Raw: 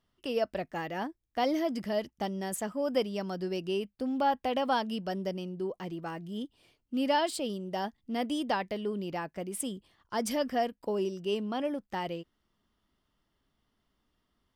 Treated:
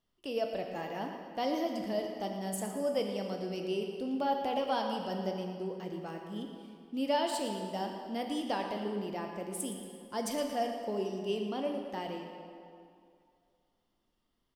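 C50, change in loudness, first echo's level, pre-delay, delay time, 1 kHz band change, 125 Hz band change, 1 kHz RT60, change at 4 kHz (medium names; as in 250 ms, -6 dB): 3.5 dB, -2.5 dB, -12.5 dB, 8 ms, 115 ms, -3.0 dB, -2.5 dB, 2.4 s, -2.5 dB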